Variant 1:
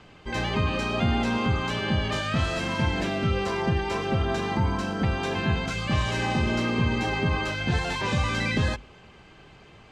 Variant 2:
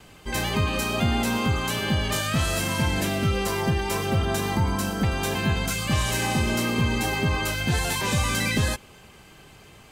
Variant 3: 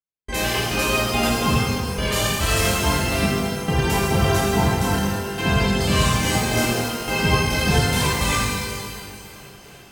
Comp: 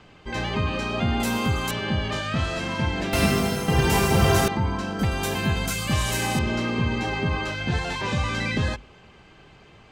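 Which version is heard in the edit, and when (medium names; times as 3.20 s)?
1
1.20–1.71 s: from 2
3.13–4.48 s: from 3
4.99–6.39 s: from 2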